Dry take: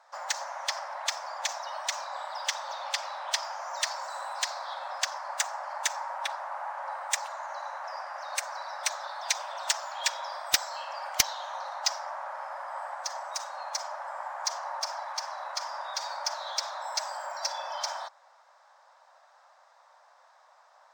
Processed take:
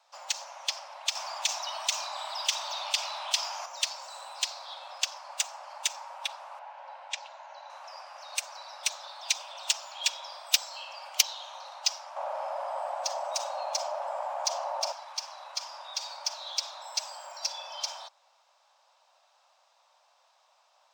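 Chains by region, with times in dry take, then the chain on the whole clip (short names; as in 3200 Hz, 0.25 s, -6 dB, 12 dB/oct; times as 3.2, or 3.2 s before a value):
1.15–3.66 high shelf 8400 Hz +3.5 dB + frequency shift +31 Hz + fast leveller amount 50%
6.59–7.7 air absorption 150 m + notch 1200 Hz, Q 5.9
12.16–14.92 bell 610 Hz +14 dB 1.2 oct + fast leveller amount 50%
whole clip: steep high-pass 470 Hz 96 dB/oct; resonant high shelf 2200 Hz +6 dB, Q 3; gain -6.5 dB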